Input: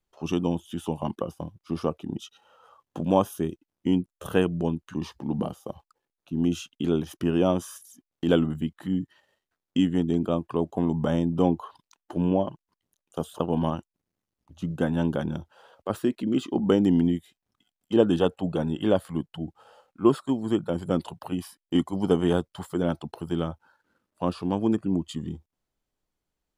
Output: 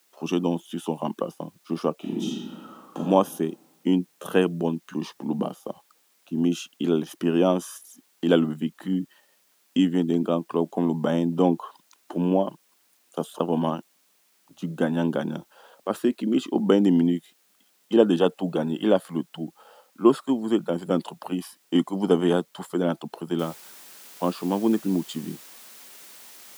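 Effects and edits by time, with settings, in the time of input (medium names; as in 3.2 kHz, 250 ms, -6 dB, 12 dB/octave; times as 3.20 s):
1.95–2.99 s: reverb throw, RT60 1.4 s, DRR -4 dB
23.39 s: noise floor step -67 dB -49 dB
whole clip: high-pass 180 Hz 24 dB/octave; trim +2.5 dB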